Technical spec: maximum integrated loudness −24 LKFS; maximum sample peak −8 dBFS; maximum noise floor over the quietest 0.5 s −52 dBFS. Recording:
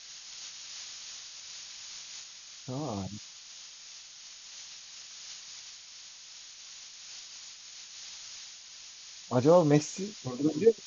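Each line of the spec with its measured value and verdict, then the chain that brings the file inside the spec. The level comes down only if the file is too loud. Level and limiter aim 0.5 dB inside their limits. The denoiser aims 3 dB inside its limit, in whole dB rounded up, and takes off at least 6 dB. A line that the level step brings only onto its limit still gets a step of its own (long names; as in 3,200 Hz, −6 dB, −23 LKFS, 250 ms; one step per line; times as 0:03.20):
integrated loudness −33.0 LKFS: in spec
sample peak −10.5 dBFS: in spec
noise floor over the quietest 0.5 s −49 dBFS: out of spec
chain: broadband denoise 6 dB, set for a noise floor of −49 dBFS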